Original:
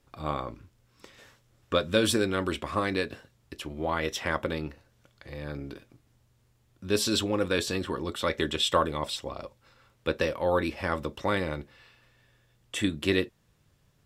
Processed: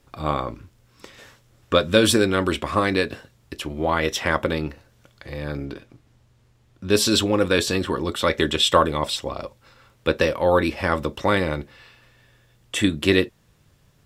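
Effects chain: 5.65–6.9 high shelf 9400 Hz -12 dB; gain +7.5 dB

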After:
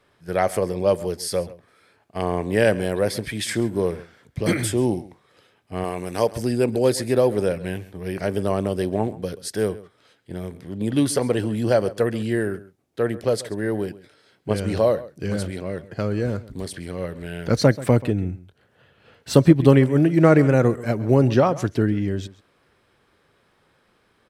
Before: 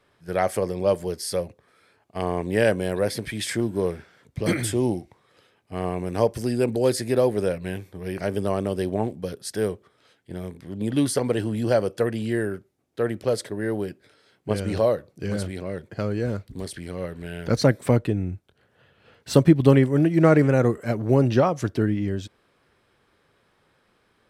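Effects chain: 5.84–6.33 tilt +2 dB/oct; outdoor echo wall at 23 m, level -18 dB; gain +2 dB

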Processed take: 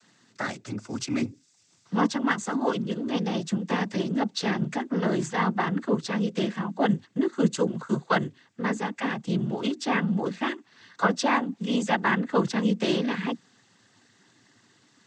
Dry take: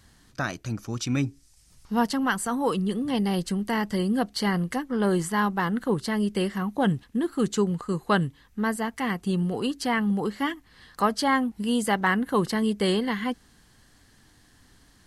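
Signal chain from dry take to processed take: bell 130 Hz -14 dB 0.3 oct; noise vocoder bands 16

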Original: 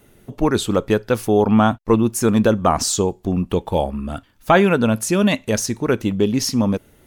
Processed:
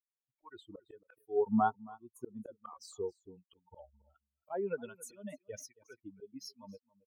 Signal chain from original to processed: per-bin expansion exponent 3; three-band isolator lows -20 dB, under 340 Hz, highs -17 dB, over 2300 Hz; auto swell 0.439 s; harmonic tremolo 1.3 Hz, depth 100%, crossover 950 Hz; on a send: echo 0.274 s -21.5 dB; on the sum: gain +1 dB

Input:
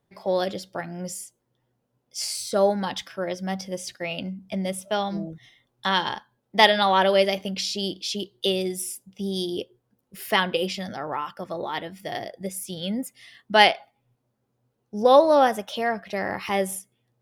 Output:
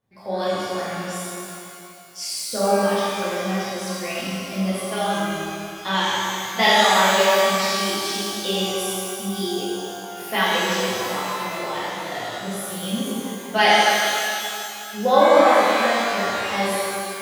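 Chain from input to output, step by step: reverb removal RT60 1.8 s; shimmer reverb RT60 2.6 s, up +12 st, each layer -8 dB, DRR -11 dB; gain -7 dB

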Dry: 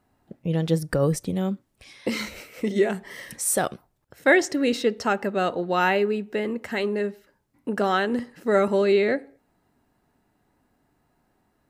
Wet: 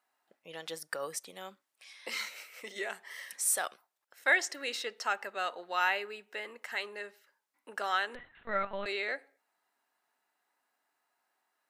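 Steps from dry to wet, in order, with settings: HPF 990 Hz 12 dB/oct; 8.15–8.86 LPC vocoder at 8 kHz pitch kept; gain -4.5 dB

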